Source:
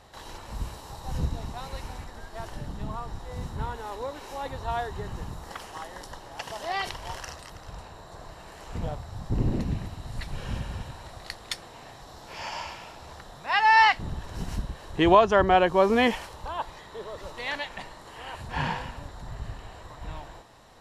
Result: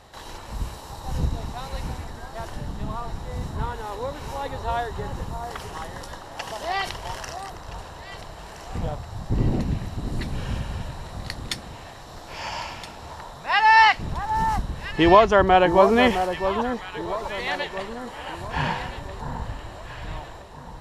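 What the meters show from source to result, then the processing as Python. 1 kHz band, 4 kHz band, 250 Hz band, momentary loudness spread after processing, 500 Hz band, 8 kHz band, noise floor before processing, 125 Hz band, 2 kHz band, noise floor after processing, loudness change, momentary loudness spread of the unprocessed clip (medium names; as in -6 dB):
+4.0 dB, +4.0 dB, +4.0 dB, 22 LU, +4.5 dB, +4.0 dB, -47 dBFS, +4.5 dB, +4.0 dB, -41 dBFS, +3.5 dB, 23 LU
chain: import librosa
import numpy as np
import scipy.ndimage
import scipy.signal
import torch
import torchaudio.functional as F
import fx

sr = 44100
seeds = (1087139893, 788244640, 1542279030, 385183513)

y = fx.echo_alternate(x, sr, ms=660, hz=1300.0, feedback_pct=60, wet_db=-8.0)
y = y * librosa.db_to_amplitude(3.5)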